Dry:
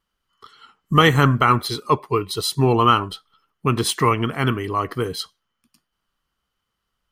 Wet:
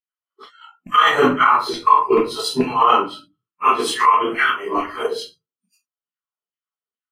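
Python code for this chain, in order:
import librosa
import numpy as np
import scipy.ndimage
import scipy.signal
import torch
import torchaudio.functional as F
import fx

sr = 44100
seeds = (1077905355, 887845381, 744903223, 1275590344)

p1 = fx.phase_scramble(x, sr, seeds[0], window_ms=100)
p2 = fx.transient(p1, sr, attack_db=7, sustain_db=-4)
p3 = fx.filter_lfo_highpass(p2, sr, shape='saw_down', hz=2.3, low_hz=260.0, high_hz=2400.0, q=2.5)
p4 = fx.high_shelf(p3, sr, hz=11000.0, db=-10.5)
p5 = fx.room_shoebox(p4, sr, seeds[1], volume_m3=200.0, walls='furnished', distance_m=1.4)
p6 = fx.over_compress(p5, sr, threshold_db=-10.0, ratio=-0.5)
p7 = p5 + (p6 * librosa.db_to_amplitude(1.5))
p8 = fx.noise_reduce_blind(p7, sr, reduce_db=24)
y = p8 * librosa.db_to_amplitude(-10.0)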